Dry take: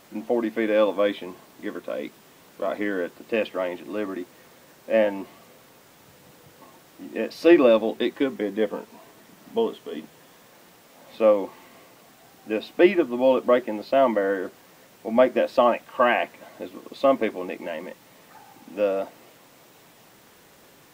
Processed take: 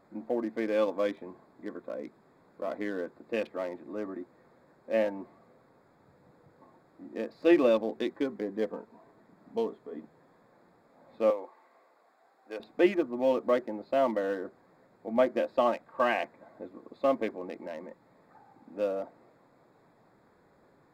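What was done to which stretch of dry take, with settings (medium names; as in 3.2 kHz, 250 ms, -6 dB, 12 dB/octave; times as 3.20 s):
11.30–12.60 s: high-pass 570 Hz
whole clip: local Wiener filter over 15 samples; trim -7 dB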